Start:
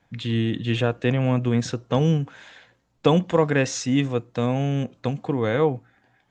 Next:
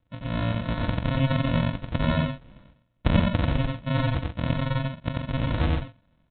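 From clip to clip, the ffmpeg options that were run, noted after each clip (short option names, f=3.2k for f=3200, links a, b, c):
-af "aresample=8000,acrusher=samples=20:mix=1:aa=0.000001,aresample=44100,aecho=1:1:90.38|134.1:0.794|0.355,volume=-4.5dB"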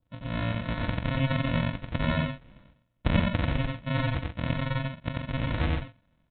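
-af "adynamicequalizer=threshold=0.00562:dfrequency=2100:dqfactor=1.6:tfrequency=2100:tqfactor=1.6:attack=5:release=100:ratio=0.375:range=2.5:mode=boostabove:tftype=bell,volume=-3.5dB"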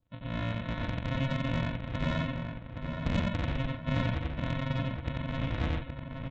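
-filter_complex "[0:a]aresample=16000,asoftclip=type=tanh:threshold=-21dB,aresample=44100,asplit=2[a][b];[b]adelay=820,lowpass=f=2.6k:p=1,volume=-5.5dB,asplit=2[c][d];[d]adelay=820,lowpass=f=2.6k:p=1,volume=0.5,asplit=2[e][f];[f]adelay=820,lowpass=f=2.6k:p=1,volume=0.5,asplit=2[g][h];[h]adelay=820,lowpass=f=2.6k:p=1,volume=0.5,asplit=2[i][j];[j]adelay=820,lowpass=f=2.6k:p=1,volume=0.5,asplit=2[k][l];[l]adelay=820,lowpass=f=2.6k:p=1,volume=0.5[m];[a][c][e][g][i][k][m]amix=inputs=7:normalize=0,volume=-2.5dB"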